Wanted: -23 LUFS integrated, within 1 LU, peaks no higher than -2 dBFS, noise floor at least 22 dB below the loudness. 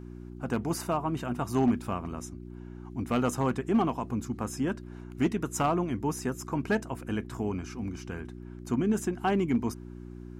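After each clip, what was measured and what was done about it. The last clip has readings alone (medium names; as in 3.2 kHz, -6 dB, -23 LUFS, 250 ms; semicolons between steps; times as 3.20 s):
clipped samples 0.3%; clipping level -18.5 dBFS; hum 60 Hz; highest harmonic 360 Hz; hum level -41 dBFS; loudness -31.0 LUFS; peak level -18.5 dBFS; loudness target -23.0 LUFS
-> clip repair -18.5 dBFS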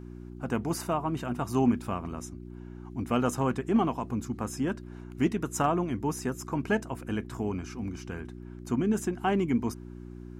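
clipped samples 0.0%; hum 60 Hz; highest harmonic 360 Hz; hum level -41 dBFS
-> de-hum 60 Hz, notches 6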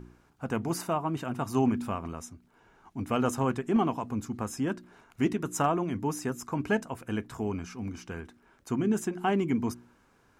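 hum not found; loudness -31.0 LUFS; peak level -12.5 dBFS; loudness target -23.0 LUFS
-> trim +8 dB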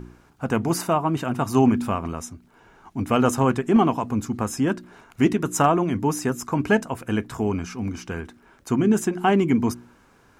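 loudness -23.0 LUFS; peak level -4.5 dBFS; noise floor -57 dBFS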